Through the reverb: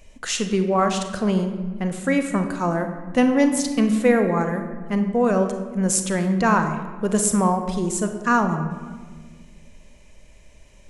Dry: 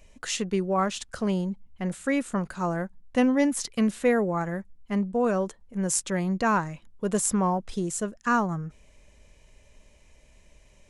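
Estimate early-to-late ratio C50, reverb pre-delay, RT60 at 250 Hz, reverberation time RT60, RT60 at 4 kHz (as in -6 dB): 7.5 dB, 33 ms, 2.3 s, 1.6 s, 0.90 s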